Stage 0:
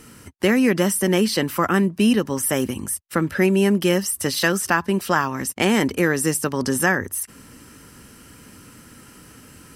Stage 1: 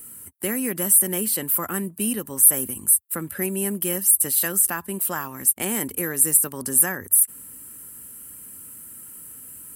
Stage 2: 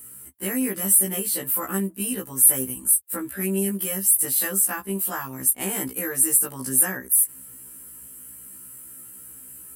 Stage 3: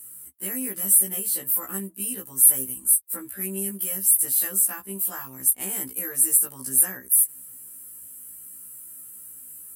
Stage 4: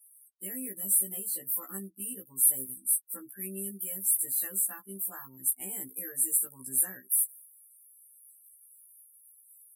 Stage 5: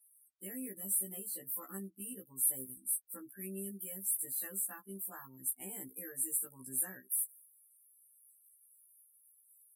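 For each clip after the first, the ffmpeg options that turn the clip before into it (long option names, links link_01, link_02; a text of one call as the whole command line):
ffmpeg -i in.wav -af "aexciter=amount=8.9:drive=8.6:freq=8100,volume=-10dB" out.wav
ffmpeg -i in.wav -af "afftfilt=real='re*1.73*eq(mod(b,3),0)':imag='im*1.73*eq(mod(b,3),0)':win_size=2048:overlap=0.75,volume=1dB" out.wav
ffmpeg -i in.wav -af "aemphasis=mode=production:type=cd,volume=-8dB" out.wav
ffmpeg -i in.wav -af "afftdn=noise_reduction=33:noise_floor=-40,volume=-8dB" out.wav
ffmpeg -i in.wav -af "highshelf=frequency=3300:gain=-6,volume=-2.5dB" out.wav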